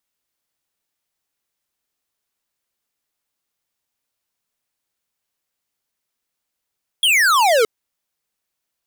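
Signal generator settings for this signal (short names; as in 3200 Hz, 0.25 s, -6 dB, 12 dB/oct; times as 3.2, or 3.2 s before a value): laser zap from 3400 Hz, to 420 Hz, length 0.62 s square, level -14 dB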